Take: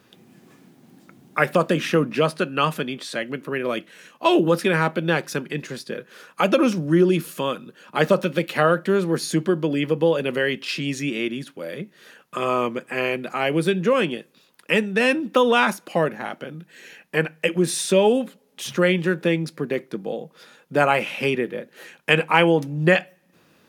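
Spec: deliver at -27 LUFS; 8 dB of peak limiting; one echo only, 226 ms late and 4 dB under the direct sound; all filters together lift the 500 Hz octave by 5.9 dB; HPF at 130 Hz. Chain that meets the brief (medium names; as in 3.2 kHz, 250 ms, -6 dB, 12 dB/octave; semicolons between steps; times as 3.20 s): high-pass 130 Hz; peaking EQ 500 Hz +7 dB; peak limiter -8 dBFS; delay 226 ms -4 dB; trim -7.5 dB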